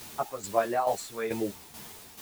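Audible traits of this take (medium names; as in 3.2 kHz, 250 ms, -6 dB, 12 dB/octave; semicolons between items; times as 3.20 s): a quantiser's noise floor 8-bit, dither triangular; tremolo saw down 2.3 Hz, depth 65%; a shimmering, thickened sound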